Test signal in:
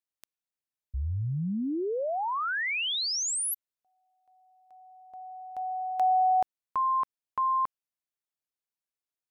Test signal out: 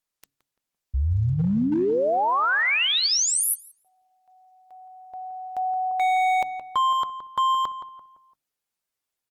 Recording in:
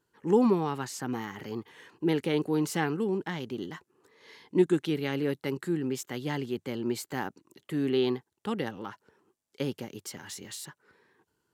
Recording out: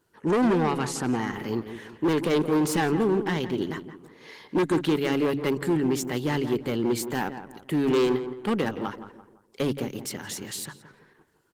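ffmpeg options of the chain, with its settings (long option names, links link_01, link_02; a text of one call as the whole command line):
ffmpeg -i in.wav -filter_complex "[0:a]bandreject=frequency=140.4:width_type=h:width=4,bandreject=frequency=280.8:width_type=h:width=4,asoftclip=type=hard:threshold=-27dB,asplit=2[link_01][link_02];[link_02]adelay=170,lowpass=frequency=1900:poles=1,volume=-10dB,asplit=2[link_03][link_04];[link_04]adelay=170,lowpass=frequency=1900:poles=1,volume=0.41,asplit=2[link_05][link_06];[link_06]adelay=170,lowpass=frequency=1900:poles=1,volume=0.41,asplit=2[link_07][link_08];[link_08]adelay=170,lowpass=frequency=1900:poles=1,volume=0.41[link_09];[link_03][link_05][link_07][link_09]amix=inputs=4:normalize=0[link_10];[link_01][link_10]amix=inputs=2:normalize=0,volume=8dB" -ar 48000 -c:a libopus -b:a 20k out.opus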